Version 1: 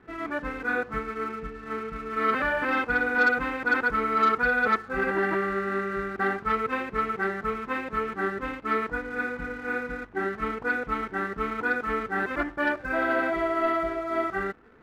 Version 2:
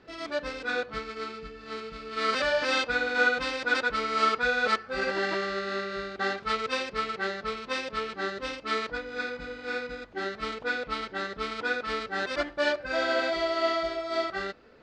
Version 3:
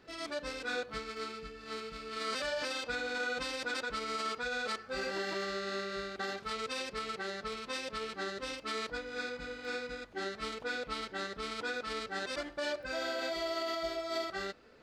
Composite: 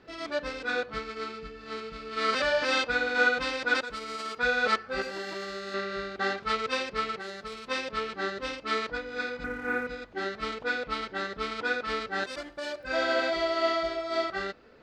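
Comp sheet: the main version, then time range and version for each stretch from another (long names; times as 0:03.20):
2
0:03.81–0:04.39: punch in from 3
0:05.02–0:05.74: punch in from 3
0:07.19–0:07.68: punch in from 3
0:09.44–0:09.87: punch in from 1
0:12.24–0:12.87: punch in from 3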